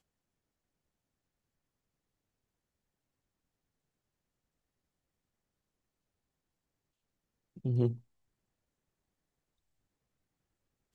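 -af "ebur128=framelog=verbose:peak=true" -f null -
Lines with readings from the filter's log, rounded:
Integrated loudness:
  I:         -33.1 LUFS
  Threshold: -44.4 LUFS
Loudness range:
  LRA:         3.4 LU
  Threshold: -60.6 LUFS
  LRA low:   -43.5 LUFS
  LRA high:  -40.1 LUFS
True peak:
  Peak:      -17.0 dBFS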